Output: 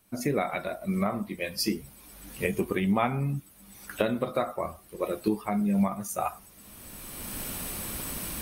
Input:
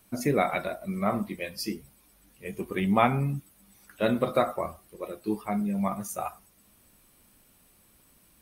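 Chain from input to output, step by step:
camcorder AGC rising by 19 dB per second
level −4.5 dB

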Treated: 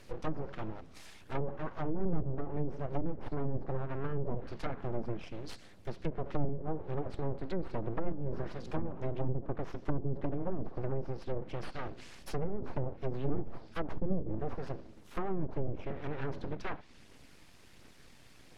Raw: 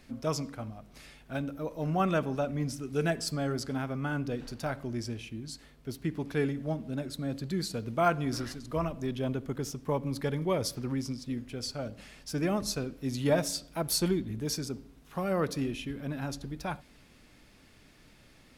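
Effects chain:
phase shifter 1.4 Hz, delay 1.3 ms, feedback 30%
full-wave rectification
treble cut that deepens with the level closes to 350 Hz, closed at −25.5 dBFS
level +1 dB

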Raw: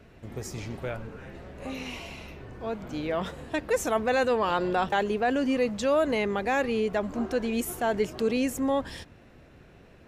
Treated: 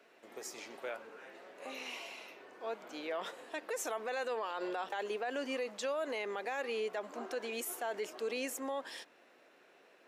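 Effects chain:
Bessel high-pass filter 500 Hz, order 4
brickwall limiter −25 dBFS, peak gain reduction 10 dB
level −4 dB

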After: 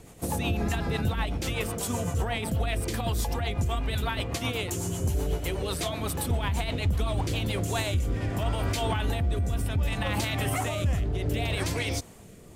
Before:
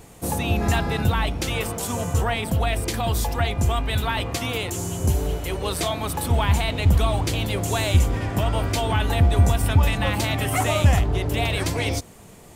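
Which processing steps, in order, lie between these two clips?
brickwall limiter −16.5 dBFS, peak gain reduction 10.5 dB
rotating-speaker cabinet horn 8 Hz, later 0.65 Hz, at 0:07.13
level −1 dB

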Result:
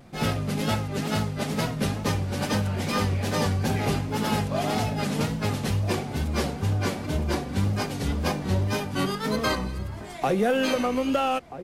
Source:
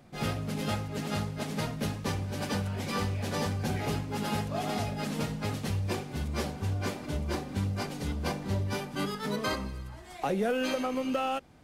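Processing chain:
tape wow and flutter 65 cents
slap from a distant wall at 220 metres, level −13 dB
0:07.53–0:09.78: one half of a high-frequency compander encoder only
level +6 dB

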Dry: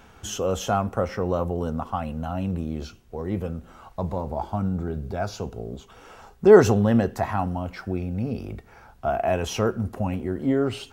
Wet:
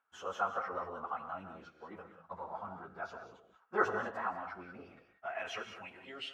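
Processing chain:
noise gate −43 dBFS, range −22 dB
band-pass filter sweep 1,300 Hz → 2,900 Hz, 0:07.93–0:10.66
reverb whose tail is shaped and stops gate 370 ms rising, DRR 7.5 dB
time stretch by phase vocoder 0.58×
level +1 dB

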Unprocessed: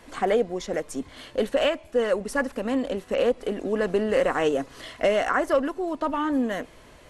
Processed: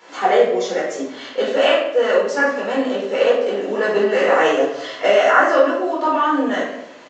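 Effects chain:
high-pass filter 380 Hz 12 dB per octave
convolution reverb RT60 0.75 s, pre-delay 8 ms, DRR −7 dB
downsampling to 16,000 Hz

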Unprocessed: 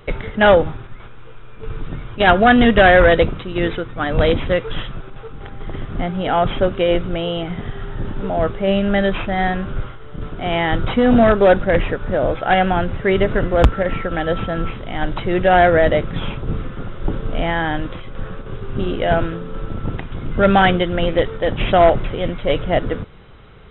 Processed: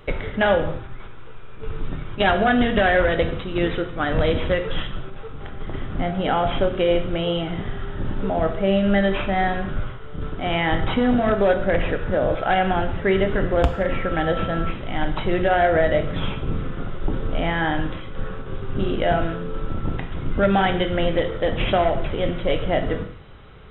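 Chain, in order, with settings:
downward compressor, threshold −14 dBFS, peak gain reduction 8.5 dB
reverb whose tail is shaped and stops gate 240 ms falling, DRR 6 dB
level −2 dB

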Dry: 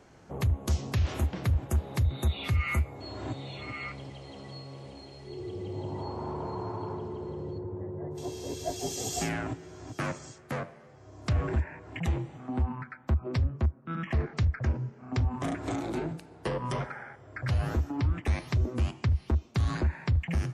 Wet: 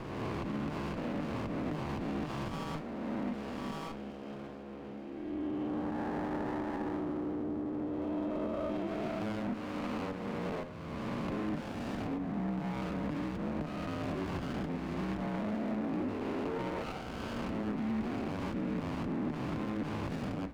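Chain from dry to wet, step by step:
peak hold with a rise ahead of every peak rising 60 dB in 2.02 s
parametric band 300 Hz +5.5 dB 0.38 octaves
single-sideband voice off tune −64 Hz 220–2,700 Hz
brickwall limiter −27 dBFS, peak gain reduction 10.5 dB
windowed peak hold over 17 samples

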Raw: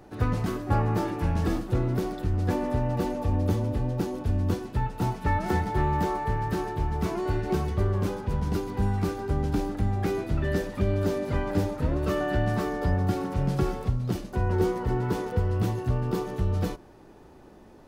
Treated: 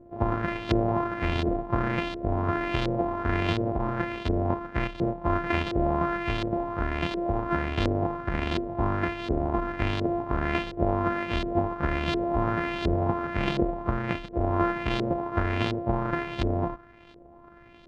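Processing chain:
samples sorted by size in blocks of 128 samples
auto-filter low-pass saw up 1.4 Hz 440–3,900 Hz
level −2 dB

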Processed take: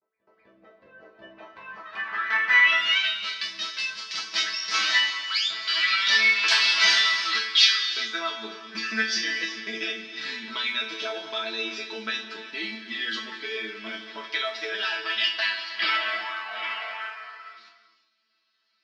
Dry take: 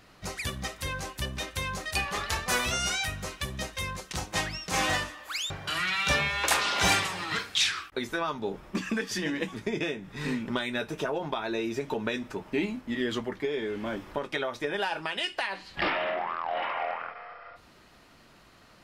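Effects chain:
fade in at the beginning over 1.25 s
resonators tuned to a chord A3 fifth, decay 0.32 s
noise gate with hold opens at −58 dBFS
high-pass filter 240 Hz 12 dB per octave
flat-topped bell 2,600 Hz +12.5 dB 2.5 octaves
noise that follows the level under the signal 30 dB
low-pass filter sweep 550 Hz → 5,000 Hz, 0:01.11–0:03.51
echo ahead of the sound 255 ms −20 dB
reverb whose tail is shaped and stops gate 420 ms flat, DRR 8.5 dB
level +8.5 dB

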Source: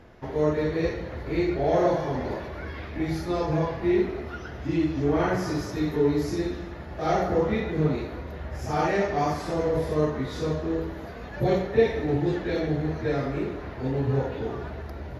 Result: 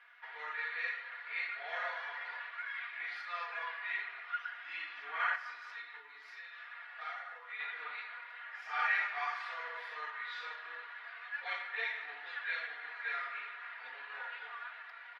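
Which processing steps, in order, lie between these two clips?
high-frequency loss of the air 470 metres
0:05.35–0:07.60: downward compressor 5 to 1, threshold −32 dBFS, peak gain reduction 12.5 dB
high-pass filter 1,500 Hz 24 dB per octave
high-shelf EQ 8,100 Hz −8 dB
comb filter 4.2 ms, depth 70%
level +6 dB
SBC 128 kbit/s 48,000 Hz

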